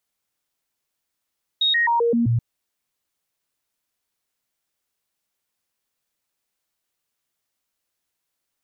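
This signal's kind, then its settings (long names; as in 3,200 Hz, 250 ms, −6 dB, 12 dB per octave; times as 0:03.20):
stepped sweep 3,750 Hz down, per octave 1, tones 6, 0.13 s, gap 0.00 s −16 dBFS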